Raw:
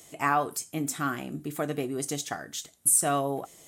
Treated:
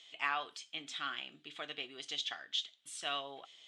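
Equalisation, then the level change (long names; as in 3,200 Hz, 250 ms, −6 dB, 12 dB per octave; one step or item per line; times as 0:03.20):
resonant band-pass 3,300 Hz, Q 4.5
high-frequency loss of the air 130 metres
+11.5 dB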